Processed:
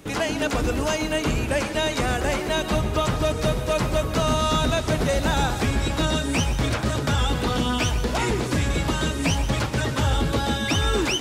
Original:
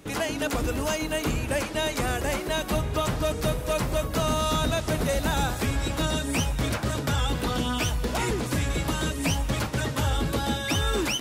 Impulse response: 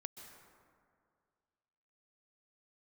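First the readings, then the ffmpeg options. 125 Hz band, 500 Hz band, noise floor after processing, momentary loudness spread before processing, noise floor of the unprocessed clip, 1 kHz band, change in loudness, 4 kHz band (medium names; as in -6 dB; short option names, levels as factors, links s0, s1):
+3.5 dB, +3.5 dB, -28 dBFS, 2 LU, -33 dBFS, +3.5 dB, +3.5 dB, +3.5 dB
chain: -filter_complex "[0:a]acrossover=split=8500[s0][s1];[s1]acompressor=threshold=0.00251:ratio=4:attack=1:release=60[s2];[s0][s2]amix=inputs=2:normalize=0[s3];[1:a]atrim=start_sample=2205,afade=t=out:st=0.2:d=0.01,atrim=end_sample=9261[s4];[s3][s4]afir=irnorm=-1:irlink=0,volume=2.66"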